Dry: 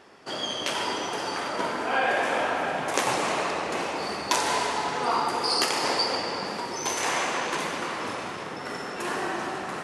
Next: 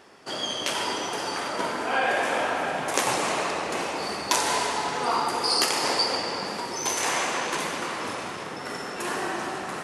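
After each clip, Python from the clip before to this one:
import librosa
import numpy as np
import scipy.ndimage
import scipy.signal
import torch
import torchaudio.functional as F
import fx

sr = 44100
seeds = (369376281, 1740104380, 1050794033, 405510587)

y = fx.high_shelf(x, sr, hz=7200.0, db=7.0)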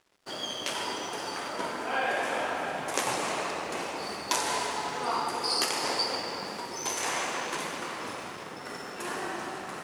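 y = np.sign(x) * np.maximum(np.abs(x) - 10.0 ** (-49.0 / 20.0), 0.0)
y = F.gain(torch.from_numpy(y), -4.5).numpy()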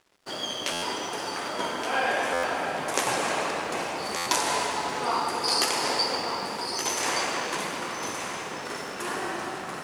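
y = x + 10.0 ** (-8.5 / 20.0) * np.pad(x, (int(1172 * sr / 1000.0), 0))[:len(x)]
y = fx.buffer_glitch(y, sr, at_s=(0.72, 2.33, 4.16), block=512, repeats=8)
y = F.gain(torch.from_numpy(y), 3.0).numpy()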